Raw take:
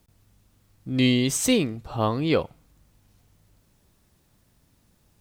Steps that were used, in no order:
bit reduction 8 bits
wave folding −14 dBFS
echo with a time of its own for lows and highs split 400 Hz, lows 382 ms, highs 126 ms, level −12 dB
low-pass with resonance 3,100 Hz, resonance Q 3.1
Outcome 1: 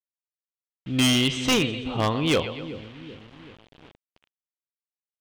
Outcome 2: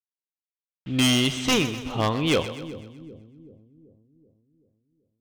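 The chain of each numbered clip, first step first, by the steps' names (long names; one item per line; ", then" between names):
echo with a time of its own for lows and highs, then bit reduction, then low-pass with resonance, then wave folding
bit reduction, then low-pass with resonance, then wave folding, then echo with a time of its own for lows and highs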